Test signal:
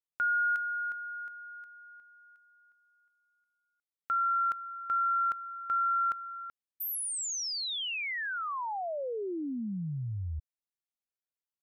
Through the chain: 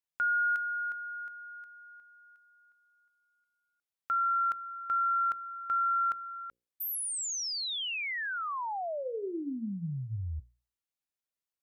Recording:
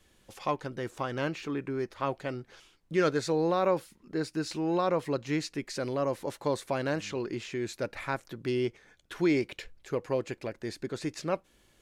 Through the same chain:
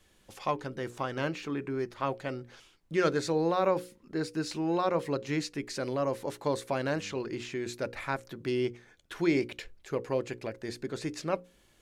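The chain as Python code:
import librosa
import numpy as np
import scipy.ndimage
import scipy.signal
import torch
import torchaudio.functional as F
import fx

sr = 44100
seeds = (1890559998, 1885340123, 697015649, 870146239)

y = fx.hum_notches(x, sr, base_hz=60, count=9)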